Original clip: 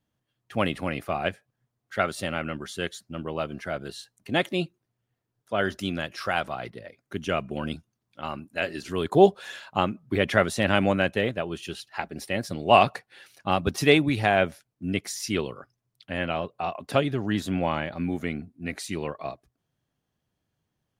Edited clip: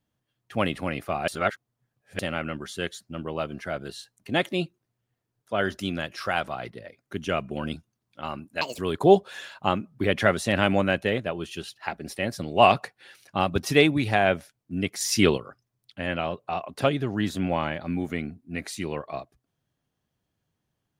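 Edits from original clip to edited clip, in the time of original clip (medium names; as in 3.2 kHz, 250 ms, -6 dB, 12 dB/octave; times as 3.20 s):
1.28–2.19 s: reverse
8.61–8.90 s: speed 164%
15.12–15.49 s: gain +7.5 dB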